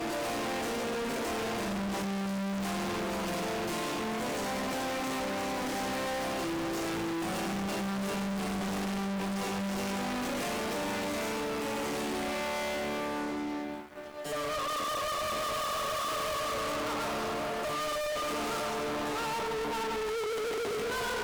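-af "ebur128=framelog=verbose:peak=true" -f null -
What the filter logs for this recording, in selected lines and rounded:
Integrated loudness:
  I:         -32.9 LUFS
  Threshold: -42.9 LUFS
Loudness range:
  LRA:         1.5 LU
  Threshold: -53.0 LUFS
  LRA low:   -33.7 LUFS
  LRA high:  -32.2 LUFS
True peak:
  Peak:      -29.2 dBFS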